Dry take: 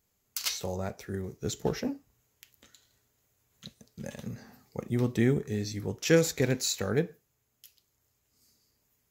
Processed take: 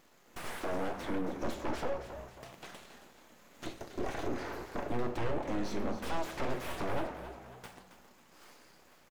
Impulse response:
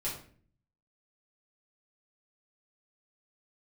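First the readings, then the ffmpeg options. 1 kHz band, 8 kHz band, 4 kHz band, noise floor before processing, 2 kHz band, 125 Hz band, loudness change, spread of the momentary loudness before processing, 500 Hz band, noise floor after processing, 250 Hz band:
+6.0 dB, -16.0 dB, -10.5 dB, -76 dBFS, -4.5 dB, -12.0 dB, -8.0 dB, 18 LU, -6.0 dB, -62 dBFS, -6.5 dB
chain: -filter_complex "[0:a]equalizer=f=100:t=o:w=0.93:g=7,acompressor=threshold=-40dB:ratio=4,aeval=exprs='0.02*(abs(mod(val(0)/0.02+3,4)-2)-1)':c=same,flanger=delay=3.9:depth=6.5:regen=-82:speed=0.22:shape=triangular,aeval=exprs='abs(val(0))':c=same,asplit=2[a][b];[b]highpass=f=720:p=1,volume=26dB,asoftclip=type=tanh:threshold=-36.5dB[c];[a][c]amix=inputs=2:normalize=0,lowpass=f=1k:p=1,volume=-6dB,asplit=6[d][e][f][g][h][i];[e]adelay=272,afreqshift=62,volume=-11dB[j];[f]adelay=544,afreqshift=124,volume=-18.1dB[k];[g]adelay=816,afreqshift=186,volume=-25.3dB[l];[h]adelay=1088,afreqshift=248,volume=-32.4dB[m];[i]adelay=1360,afreqshift=310,volume=-39.5dB[n];[d][j][k][l][m][n]amix=inputs=6:normalize=0,asplit=2[o][p];[1:a]atrim=start_sample=2205,asetrate=27783,aresample=44100[q];[p][q]afir=irnorm=-1:irlink=0,volume=-14.5dB[r];[o][r]amix=inputs=2:normalize=0,volume=9dB"

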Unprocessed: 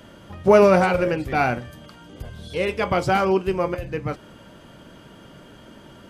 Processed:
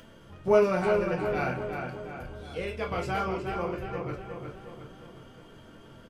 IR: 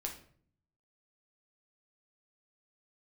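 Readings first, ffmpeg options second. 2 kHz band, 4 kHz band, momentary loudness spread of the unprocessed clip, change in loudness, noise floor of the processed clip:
-8.5 dB, -9.5 dB, 19 LU, -9.0 dB, -52 dBFS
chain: -filter_complex "[0:a]acompressor=mode=upward:threshold=-37dB:ratio=2.5,asplit=2[a][b];[b]adelay=361,lowpass=f=3.4k:p=1,volume=-5dB,asplit=2[c][d];[d]adelay=361,lowpass=f=3.4k:p=1,volume=0.53,asplit=2[e][f];[f]adelay=361,lowpass=f=3.4k:p=1,volume=0.53,asplit=2[g][h];[h]adelay=361,lowpass=f=3.4k:p=1,volume=0.53,asplit=2[i][j];[j]adelay=361,lowpass=f=3.4k:p=1,volume=0.53,asplit=2[k][l];[l]adelay=361,lowpass=f=3.4k:p=1,volume=0.53,asplit=2[m][n];[n]adelay=361,lowpass=f=3.4k:p=1,volume=0.53[o];[a][c][e][g][i][k][m][o]amix=inputs=8:normalize=0[p];[1:a]atrim=start_sample=2205,atrim=end_sample=3969,asetrate=61740,aresample=44100[q];[p][q]afir=irnorm=-1:irlink=0,volume=-6.5dB"

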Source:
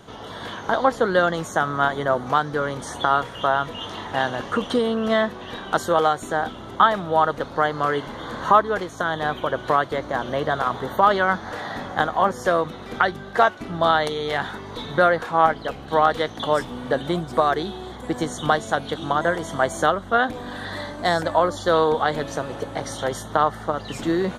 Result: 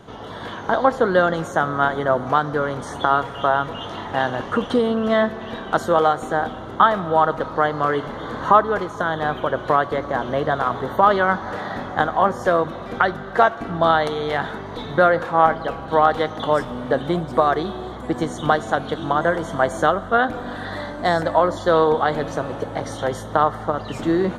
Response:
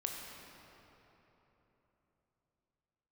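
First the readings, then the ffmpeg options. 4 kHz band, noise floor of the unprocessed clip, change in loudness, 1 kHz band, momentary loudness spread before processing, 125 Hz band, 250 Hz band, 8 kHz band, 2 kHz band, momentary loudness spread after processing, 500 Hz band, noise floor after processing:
-2.0 dB, -37 dBFS, +2.0 dB, +2.0 dB, 11 LU, +3.0 dB, +2.5 dB, n/a, +0.5 dB, 10 LU, +2.5 dB, -33 dBFS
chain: -filter_complex "[0:a]highshelf=f=2.8k:g=-8,asplit=2[a][b];[1:a]atrim=start_sample=2205[c];[b][c]afir=irnorm=-1:irlink=0,volume=-12dB[d];[a][d]amix=inputs=2:normalize=0,volume=1dB"

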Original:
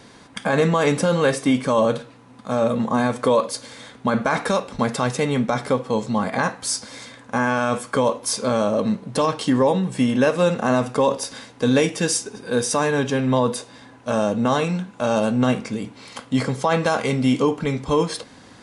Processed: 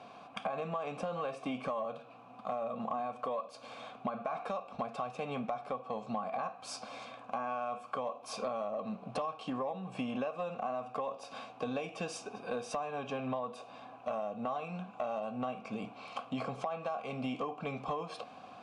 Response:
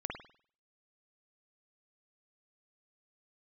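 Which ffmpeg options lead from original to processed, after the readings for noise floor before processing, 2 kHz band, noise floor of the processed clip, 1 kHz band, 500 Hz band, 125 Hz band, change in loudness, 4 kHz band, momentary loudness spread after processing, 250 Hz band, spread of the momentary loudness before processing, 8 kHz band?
-47 dBFS, -20.0 dB, -53 dBFS, -12.5 dB, -17.0 dB, -22.0 dB, -17.5 dB, -19.0 dB, 7 LU, -20.0 dB, 9 LU, -24.5 dB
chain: -filter_complex "[0:a]asplit=3[a][b][c];[a]bandpass=f=730:t=q:w=8,volume=0dB[d];[b]bandpass=f=1.09k:t=q:w=8,volume=-6dB[e];[c]bandpass=f=2.44k:t=q:w=8,volume=-9dB[f];[d][e][f]amix=inputs=3:normalize=0,lowshelf=f=260:t=q:w=1.5:g=6,acompressor=threshold=-41dB:ratio=16,asoftclip=type=tanh:threshold=-31dB,volume=8.5dB"

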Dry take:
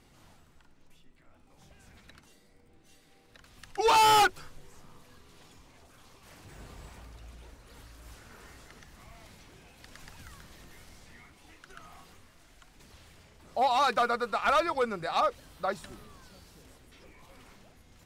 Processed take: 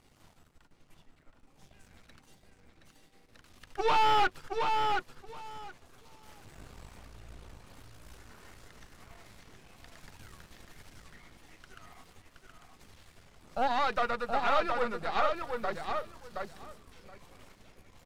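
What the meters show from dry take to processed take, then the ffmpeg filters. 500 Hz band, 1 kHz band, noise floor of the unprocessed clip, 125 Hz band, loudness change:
-2.0 dB, -2.5 dB, -61 dBFS, -1.0 dB, -4.5 dB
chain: -filter_complex "[0:a]aeval=exprs='if(lt(val(0),0),0.251*val(0),val(0))':c=same,asplit=2[a][b];[b]adelay=722,lowpass=f=4.5k:p=1,volume=-4dB,asplit=2[c][d];[d]adelay=722,lowpass=f=4.5k:p=1,volume=0.16,asplit=2[e][f];[f]adelay=722,lowpass=f=4.5k:p=1,volume=0.16[g];[a][c][e][g]amix=inputs=4:normalize=0,acrossover=split=4200[h][i];[i]acompressor=threshold=-55dB:ratio=4:attack=1:release=60[j];[h][j]amix=inputs=2:normalize=0"

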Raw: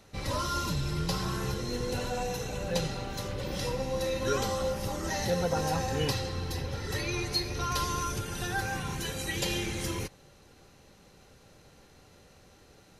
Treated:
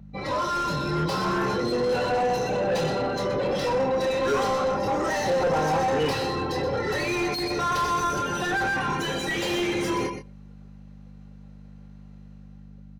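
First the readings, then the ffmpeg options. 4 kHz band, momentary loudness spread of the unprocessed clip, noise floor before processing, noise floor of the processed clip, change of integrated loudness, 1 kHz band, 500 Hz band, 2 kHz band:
+2.5 dB, 5 LU, -58 dBFS, -45 dBFS, +6.5 dB, +10.0 dB, +9.0 dB, +8.0 dB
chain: -filter_complex "[0:a]highpass=120,afftdn=nr=23:nf=-41,dynaudnorm=f=220:g=7:m=6.5dB,asoftclip=type=tanh:threshold=-14dB,asplit=2[a][b];[b]adelay=120,highpass=300,lowpass=3.4k,asoftclip=type=hard:threshold=-24dB,volume=-27dB[c];[a][c]amix=inputs=2:normalize=0,aeval=exprs='val(0)+0.00794*(sin(2*PI*50*n/s)+sin(2*PI*2*50*n/s)/2+sin(2*PI*3*50*n/s)/3+sin(2*PI*4*50*n/s)/4+sin(2*PI*5*50*n/s)/5)':c=same,asplit=2[d][e];[e]adelay=26,volume=-5.5dB[f];[d][f]amix=inputs=2:normalize=0,asplit=2[g][h];[h]aecho=0:1:123:0.251[i];[g][i]amix=inputs=2:normalize=0,asplit=2[j][k];[k]highpass=f=720:p=1,volume=25dB,asoftclip=type=tanh:threshold=-11.5dB[l];[j][l]amix=inputs=2:normalize=0,lowpass=f=1.1k:p=1,volume=-6dB,adynamicequalizer=threshold=0.00562:dfrequency=6000:dqfactor=0.7:tfrequency=6000:tqfactor=0.7:attack=5:release=100:ratio=0.375:range=1.5:mode=boostabove:tftype=highshelf,volume=-3.5dB"

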